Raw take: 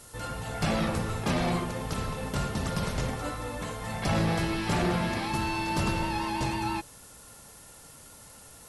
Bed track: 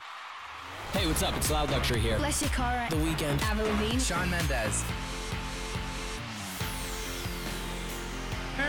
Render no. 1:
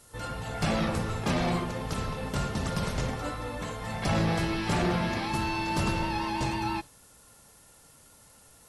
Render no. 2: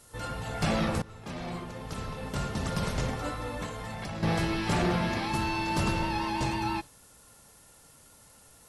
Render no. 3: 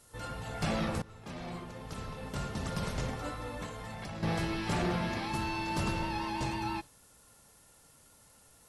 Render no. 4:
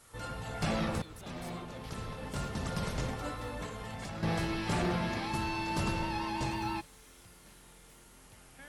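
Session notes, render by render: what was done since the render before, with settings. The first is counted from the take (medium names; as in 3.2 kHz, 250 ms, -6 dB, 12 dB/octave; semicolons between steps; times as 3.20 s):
noise print and reduce 6 dB
1.02–2.86 s: fade in, from -18 dB; 3.66–4.23 s: compression 10:1, threshold -33 dBFS
trim -4.5 dB
add bed track -23 dB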